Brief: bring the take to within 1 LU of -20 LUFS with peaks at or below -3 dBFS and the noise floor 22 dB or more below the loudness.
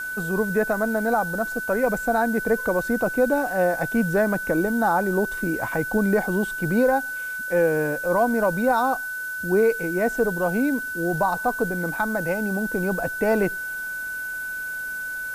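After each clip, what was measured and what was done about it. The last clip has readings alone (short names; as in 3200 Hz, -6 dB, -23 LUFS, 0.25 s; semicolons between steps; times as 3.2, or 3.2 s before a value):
steady tone 1500 Hz; tone level -28 dBFS; noise floor -31 dBFS; noise floor target -46 dBFS; loudness -23.5 LUFS; peak -10.0 dBFS; loudness target -20.0 LUFS
-> notch 1500 Hz, Q 30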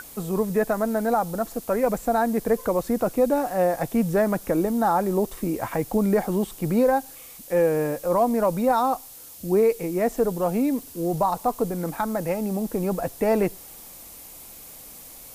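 steady tone none; noise floor -44 dBFS; noise floor target -46 dBFS
-> denoiser 6 dB, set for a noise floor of -44 dBFS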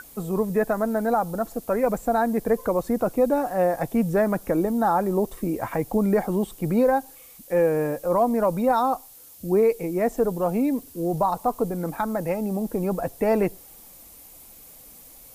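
noise floor -48 dBFS; loudness -24.0 LUFS; peak -11.5 dBFS; loudness target -20.0 LUFS
-> gain +4 dB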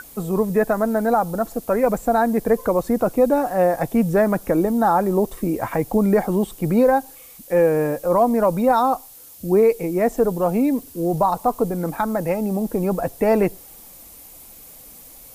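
loudness -20.0 LUFS; peak -7.5 dBFS; noise floor -44 dBFS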